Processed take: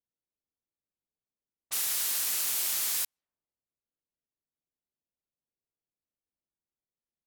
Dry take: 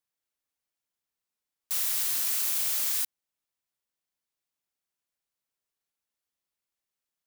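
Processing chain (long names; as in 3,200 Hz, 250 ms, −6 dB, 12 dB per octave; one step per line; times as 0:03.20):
low-pass that shuts in the quiet parts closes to 470 Hz, open at −29.5 dBFS
level +1 dB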